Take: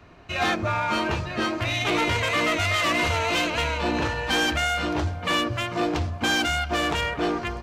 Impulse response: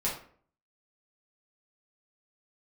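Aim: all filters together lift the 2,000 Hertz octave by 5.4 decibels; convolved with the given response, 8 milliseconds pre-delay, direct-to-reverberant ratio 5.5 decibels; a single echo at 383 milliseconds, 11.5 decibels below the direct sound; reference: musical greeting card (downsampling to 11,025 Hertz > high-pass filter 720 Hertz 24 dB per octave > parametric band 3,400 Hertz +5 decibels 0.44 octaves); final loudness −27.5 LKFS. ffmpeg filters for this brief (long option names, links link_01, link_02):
-filter_complex "[0:a]equalizer=frequency=2000:width_type=o:gain=6,aecho=1:1:383:0.266,asplit=2[link_01][link_02];[1:a]atrim=start_sample=2205,adelay=8[link_03];[link_02][link_03]afir=irnorm=-1:irlink=0,volume=-12dB[link_04];[link_01][link_04]amix=inputs=2:normalize=0,aresample=11025,aresample=44100,highpass=frequency=720:width=0.5412,highpass=frequency=720:width=1.3066,equalizer=frequency=3400:width_type=o:width=0.44:gain=5,volume=-8dB"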